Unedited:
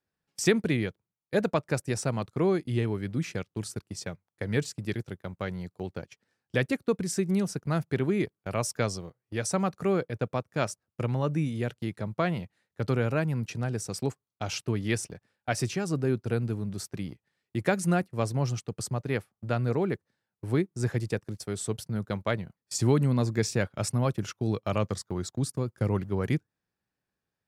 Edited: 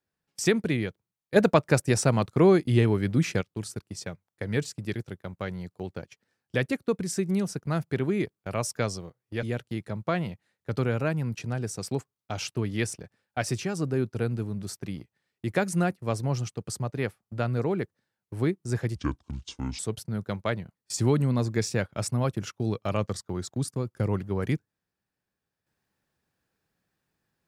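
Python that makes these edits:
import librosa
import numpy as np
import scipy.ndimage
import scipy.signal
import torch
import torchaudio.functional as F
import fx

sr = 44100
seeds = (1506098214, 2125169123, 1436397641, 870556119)

y = fx.edit(x, sr, fx.clip_gain(start_s=1.36, length_s=2.05, db=6.5),
    fx.cut(start_s=9.43, length_s=2.11),
    fx.speed_span(start_s=21.07, length_s=0.53, speed=0.64), tone=tone)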